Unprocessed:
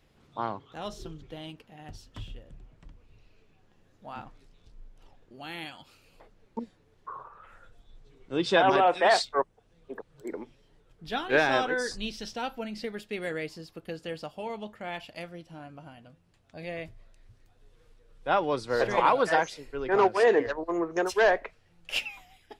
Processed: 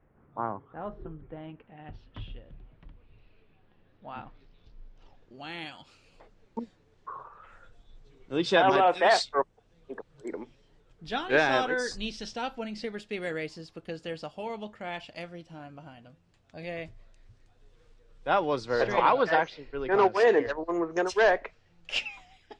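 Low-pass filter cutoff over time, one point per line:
low-pass filter 24 dB per octave
0:01.24 1,700 Hz
0:02.25 3,800 Hz
0:04.15 3,800 Hz
0:05.69 8,400 Hz
0:18.34 8,400 Hz
0:19.51 4,100 Hz
0:20.28 7,200 Hz

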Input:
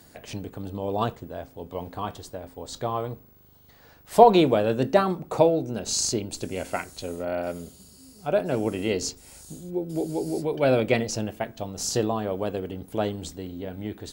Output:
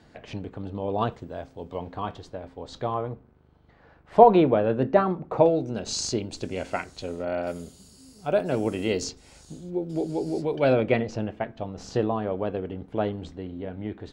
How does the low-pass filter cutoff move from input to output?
3,400 Hz
from 0:01.12 6,100 Hz
from 0:01.78 3,700 Hz
from 0:02.94 2,000 Hz
from 0:05.46 5,300 Hz
from 0:07.47 9,600 Hz
from 0:09.04 5,400 Hz
from 0:10.73 2,500 Hz

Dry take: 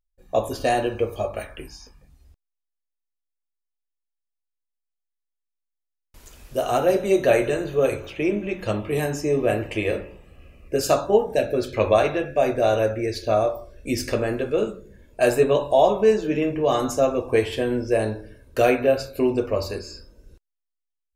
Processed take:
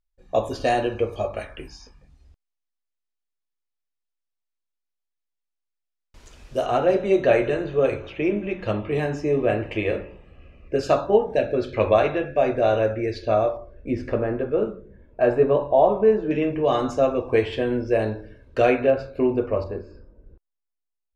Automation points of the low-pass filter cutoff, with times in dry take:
6,100 Hz
from 0:06.66 3,400 Hz
from 0:13.57 1,500 Hz
from 0:16.31 3,700 Hz
from 0:18.90 2,100 Hz
from 0:19.64 1,100 Hz

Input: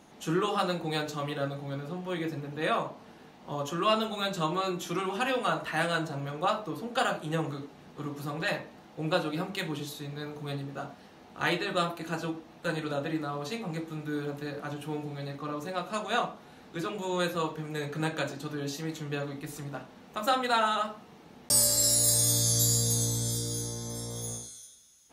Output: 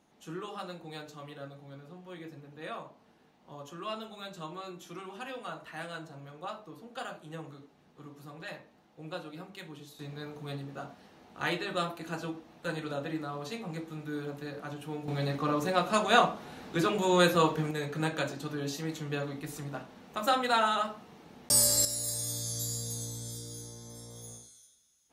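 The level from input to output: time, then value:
−12 dB
from 0:09.99 −3.5 dB
from 0:15.08 +6 dB
from 0:17.71 −0.5 dB
from 0:21.85 −10 dB

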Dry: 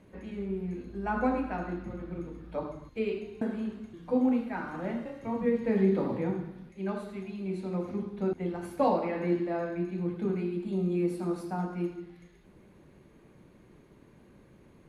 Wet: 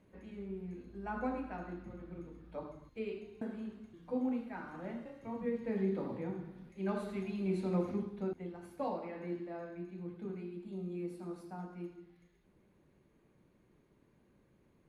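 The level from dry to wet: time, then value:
0:06.32 −9 dB
0:07.10 0 dB
0:07.81 0 dB
0:08.53 −12 dB

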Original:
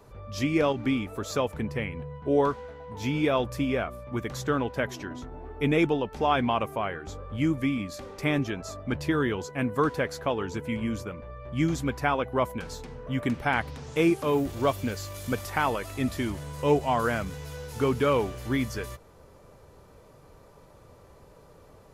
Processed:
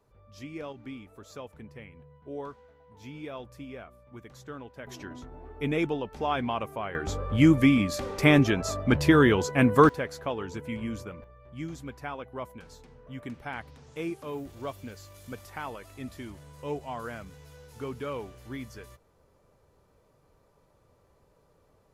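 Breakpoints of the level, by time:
−15 dB
from 0:04.87 −4.5 dB
from 0:06.95 +7 dB
from 0:09.89 −4 dB
from 0:11.24 −11.5 dB

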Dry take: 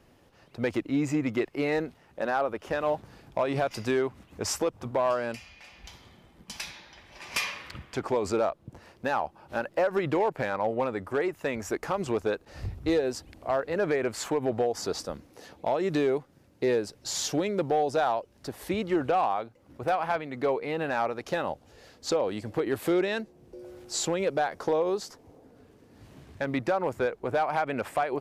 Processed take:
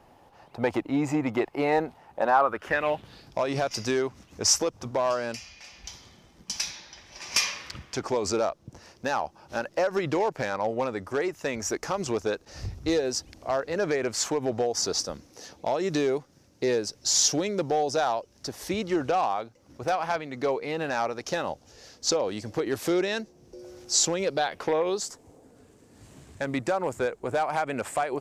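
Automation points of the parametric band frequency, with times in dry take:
parametric band +13 dB 0.78 octaves
0:02.26 830 Hz
0:03.38 5,800 Hz
0:24.22 5,800 Hz
0:24.81 1,700 Hz
0:25.03 7,700 Hz

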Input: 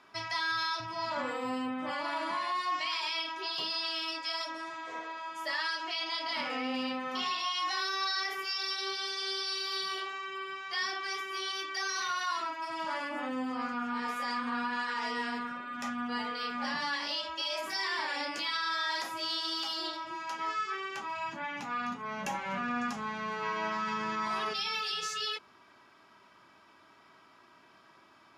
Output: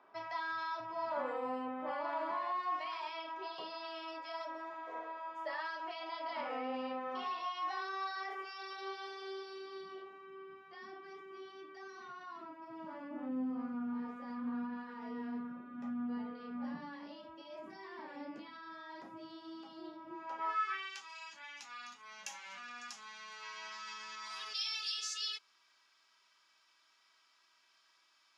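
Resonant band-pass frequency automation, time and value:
resonant band-pass, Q 1.1
0:09.04 640 Hz
0:10.08 210 Hz
0:19.97 210 Hz
0:20.53 1,000 Hz
0:21.02 5,800 Hz

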